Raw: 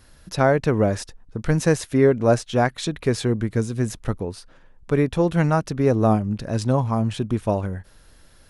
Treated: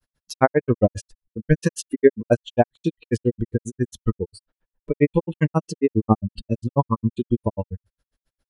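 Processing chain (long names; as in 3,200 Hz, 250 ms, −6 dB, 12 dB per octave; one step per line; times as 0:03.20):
noise reduction from a noise print of the clip's start 25 dB
granular cloud 72 ms, grains 7.4 per second, spray 17 ms, pitch spread up and down by 0 semitones
level +6 dB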